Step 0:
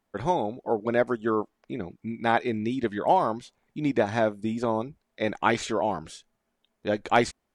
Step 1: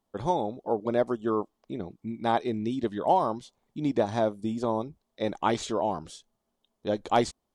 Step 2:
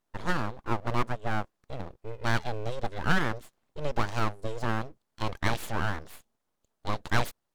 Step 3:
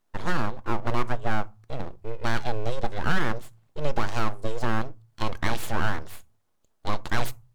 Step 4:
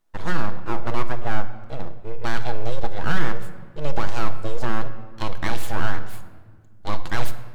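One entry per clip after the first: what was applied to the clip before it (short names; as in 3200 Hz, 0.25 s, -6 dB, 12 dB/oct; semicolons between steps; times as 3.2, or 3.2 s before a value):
band shelf 1900 Hz -8 dB 1.1 oct; gain -1.5 dB
added harmonics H 6 -23 dB, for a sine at -9 dBFS; full-wave rectifier
on a send at -16 dB: reverb RT60 0.30 s, pre-delay 3 ms; on the sum: limiter -14 dBFS, peak gain reduction 7 dB; gain +4 dB
shoebox room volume 1900 m³, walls mixed, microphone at 0.65 m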